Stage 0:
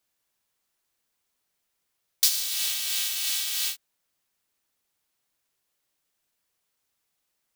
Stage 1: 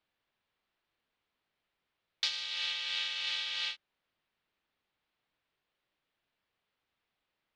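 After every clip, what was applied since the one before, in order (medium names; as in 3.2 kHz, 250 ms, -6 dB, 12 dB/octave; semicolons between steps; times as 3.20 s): low-pass 3.7 kHz 24 dB/octave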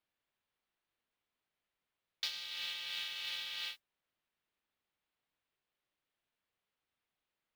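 modulation noise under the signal 18 dB; trim -6 dB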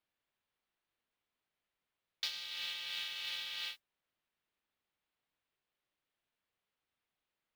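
no audible change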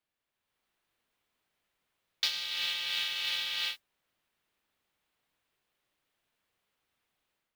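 level rider gain up to 8 dB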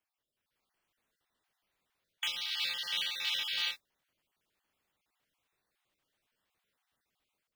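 random holes in the spectrogram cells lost 31%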